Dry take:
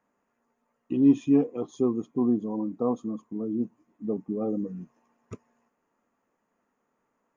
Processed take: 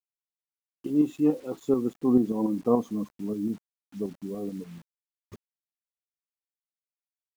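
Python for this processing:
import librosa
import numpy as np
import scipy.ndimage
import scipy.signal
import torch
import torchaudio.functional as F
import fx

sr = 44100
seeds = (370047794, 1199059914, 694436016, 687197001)

y = fx.doppler_pass(x, sr, speed_mps=24, closest_m=17.0, pass_at_s=2.49)
y = fx.tremolo_shape(y, sr, shape='saw_up', hz=6.9, depth_pct=50)
y = fx.quant_dither(y, sr, seeds[0], bits=10, dither='none')
y = F.gain(torch.from_numpy(y), 6.0).numpy()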